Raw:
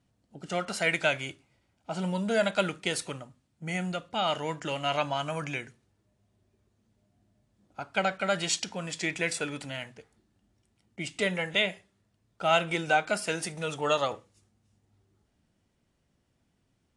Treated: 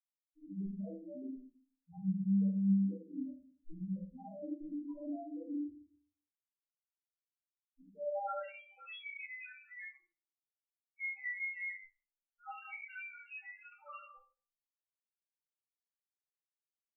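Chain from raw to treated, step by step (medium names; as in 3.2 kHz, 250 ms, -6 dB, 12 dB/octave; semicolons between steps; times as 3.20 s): peaking EQ 120 Hz +2.5 dB 0.21 oct; hum notches 50/100/150/200 Hz; in parallel at -0.5 dB: compression 20:1, threshold -35 dBFS, peak gain reduction 17.5 dB; on the sum: peak limiter -19.5 dBFS, peak gain reduction 9 dB; chord resonator C2 fifth, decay 0.71 s; whistle 800 Hz -54 dBFS; band-pass sweep 260 Hz -> 2.1 kHz, 7.89–8.49 s; bit crusher 9-bit; loudest bins only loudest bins 1; simulated room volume 250 m³, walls furnished, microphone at 4 m; trim +11.5 dB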